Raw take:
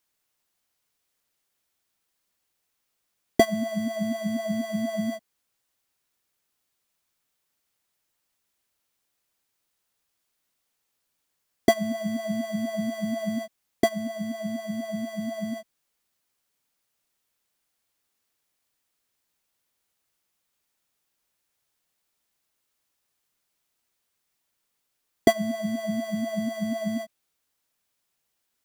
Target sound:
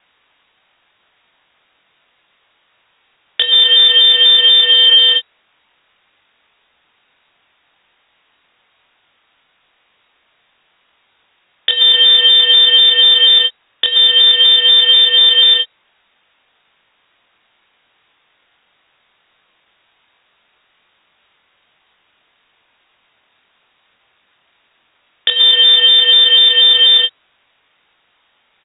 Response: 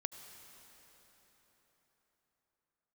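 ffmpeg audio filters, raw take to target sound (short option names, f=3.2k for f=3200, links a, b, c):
-filter_complex "[0:a]acompressor=threshold=-28dB:ratio=5,asettb=1/sr,asplit=3[a][b][c];[a]atrim=end=4.724[d];[b]atrim=start=4.72:end=5.12,asetpts=PTS-STARTPTS,afade=t=in:d=0.004:c=qsin,afade=t=out:st=0.396:d=0.004:c=qsin,highpass=f=460:t=q:w=5.2[e];[c]atrim=start=5.116[f];[d][e]acrossfade=d=0.004:c1=hsin:c2=qsin[g];[g][f]acrossfade=d=0.004:c1=qsin:c2=hsin,acrusher=bits=4:mode=log:mix=0:aa=0.000001,asplit=2[h][i];[i]adelay=23,volume=-6dB[j];[h][j]amix=inputs=2:normalize=0,lowpass=f=3.2k:t=q:w=0.5098,lowpass=f=3.2k:t=q:w=0.6013,lowpass=f=3.2k:t=q:w=0.9,lowpass=f=3.2k:t=q:w=2.563,afreqshift=-3800,alimiter=level_in=26dB:limit=-1dB:release=50:level=0:latency=1,volume=-1dB"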